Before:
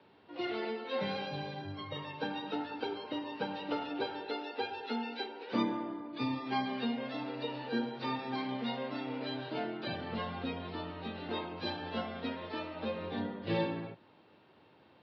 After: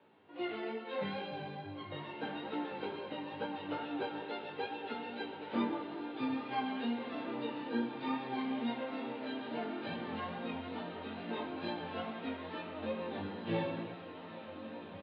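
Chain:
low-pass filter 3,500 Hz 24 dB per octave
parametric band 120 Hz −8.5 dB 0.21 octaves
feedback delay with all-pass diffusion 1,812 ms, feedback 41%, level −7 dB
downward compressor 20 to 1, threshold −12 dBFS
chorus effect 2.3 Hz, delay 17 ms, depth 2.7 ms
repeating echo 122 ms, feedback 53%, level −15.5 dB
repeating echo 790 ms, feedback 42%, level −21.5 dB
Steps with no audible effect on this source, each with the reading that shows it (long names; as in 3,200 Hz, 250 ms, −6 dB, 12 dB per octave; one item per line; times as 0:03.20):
downward compressor, threshold −12 dBFS: peak of its input −19.5 dBFS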